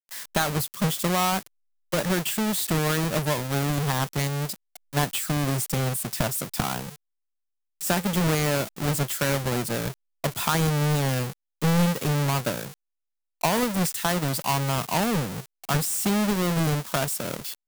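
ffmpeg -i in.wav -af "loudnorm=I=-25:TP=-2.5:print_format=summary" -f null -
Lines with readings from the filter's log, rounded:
Input Integrated:    -25.5 LUFS
Input True Peak:     -10.3 dBTP
Input LRA:             2.0 LU
Input Threshold:     -35.7 LUFS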